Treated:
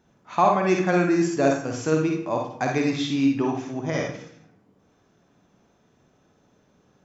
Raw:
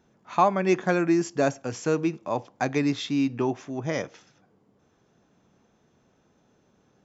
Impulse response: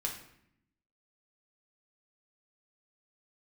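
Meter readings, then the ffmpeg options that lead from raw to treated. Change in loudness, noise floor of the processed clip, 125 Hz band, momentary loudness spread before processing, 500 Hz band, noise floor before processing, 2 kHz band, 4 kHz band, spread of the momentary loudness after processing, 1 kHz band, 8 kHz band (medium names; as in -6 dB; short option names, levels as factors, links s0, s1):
+2.5 dB, -63 dBFS, +3.5 dB, 9 LU, +2.5 dB, -66 dBFS, +2.5 dB, +2.5 dB, 8 LU, +2.5 dB, no reading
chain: -filter_complex "[0:a]asplit=2[s0][s1];[1:a]atrim=start_sample=2205,adelay=51[s2];[s1][s2]afir=irnorm=-1:irlink=0,volume=0.708[s3];[s0][s3]amix=inputs=2:normalize=0"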